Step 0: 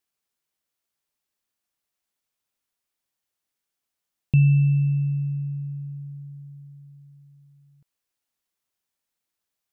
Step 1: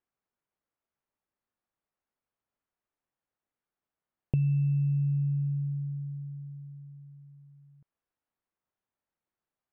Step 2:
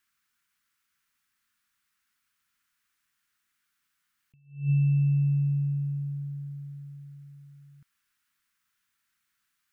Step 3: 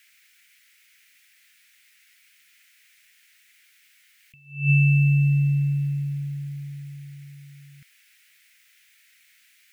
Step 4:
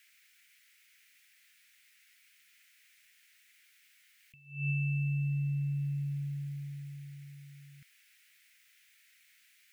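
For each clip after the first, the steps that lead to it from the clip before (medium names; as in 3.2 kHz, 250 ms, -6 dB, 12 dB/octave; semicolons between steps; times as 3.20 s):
low-pass 1.5 kHz 12 dB/octave; compression 5:1, threshold -25 dBFS, peak gain reduction 10 dB
FFT filter 230 Hz 0 dB, 640 Hz -16 dB, 1.4 kHz +13 dB; attacks held to a fixed rise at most 150 dB/s; trim +4 dB
resonant high shelf 1.5 kHz +12.5 dB, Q 3; trim +5 dB
compression 3:1, threshold -26 dBFS, peak gain reduction 8.5 dB; trim -6 dB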